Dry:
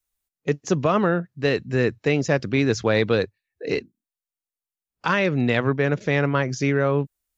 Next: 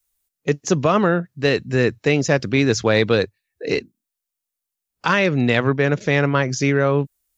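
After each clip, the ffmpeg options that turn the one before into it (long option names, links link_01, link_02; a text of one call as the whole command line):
ffmpeg -i in.wav -af "highshelf=frequency=4600:gain=6.5,volume=3dB" out.wav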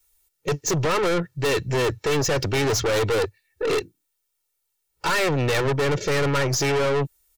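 ffmpeg -i in.wav -af "aecho=1:1:2.2:0.98,aeval=exprs='(tanh(17.8*val(0)+0.2)-tanh(0.2))/17.8':channel_layout=same,volume=5dB" out.wav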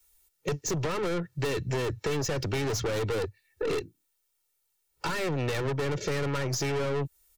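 ffmpeg -i in.wav -filter_complex "[0:a]acrossover=split=98|300[link_01][link_02][link_03];[link_01]acompressor=threshold=-39dB:ratio=4[link_04];[link_02]acompressor=threshold=-33dB:ratio=4[link_05];[link_03]acompressor=threshold=-32dB:ratio=4[link_06];[link_04][link_05][link_06]amix=inputs=3:normalize=0" out.wav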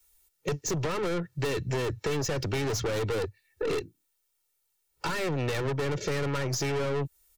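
ffmpeg -i in.wav -af anull out.wav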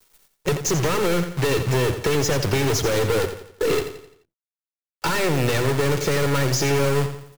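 ffmpeg -i in.wav -af "acrusher=bits=7:dc=4:mix=0:aa=0.000001,aecho=1:1:86|172|258|344|430:0.316|0.139|0.0612|0.0269|0.0119,volume=8dB" out.wav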